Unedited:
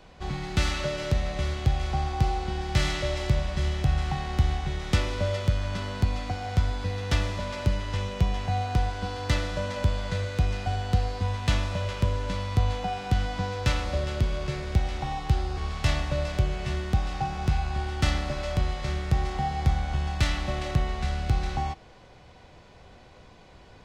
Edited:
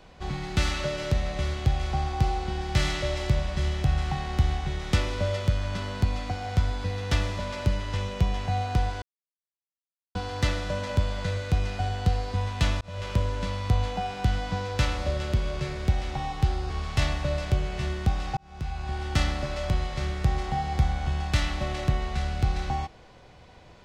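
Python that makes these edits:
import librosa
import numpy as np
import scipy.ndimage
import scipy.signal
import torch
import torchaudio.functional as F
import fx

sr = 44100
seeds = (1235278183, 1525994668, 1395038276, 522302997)

y = fx.edit(x, sr, fx.insert_silence(at_s=9.02, length_s=1.13),
    fx.fade_in_span(start_s=11.68, length_s=0.28),
    fx.fade_in_span(start_s=17.24, length_s=0.7), tone=tone)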